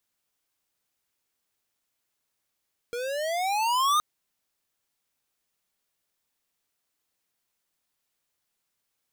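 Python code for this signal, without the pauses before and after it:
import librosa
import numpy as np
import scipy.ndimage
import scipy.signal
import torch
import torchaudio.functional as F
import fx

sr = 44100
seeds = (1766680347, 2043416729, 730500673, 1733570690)

y = fx.riser_tone(sr, length_s=1.07, level_db=-21.5, wave='square', hz=468.0, rise_st=17.0, swell_db=10.5)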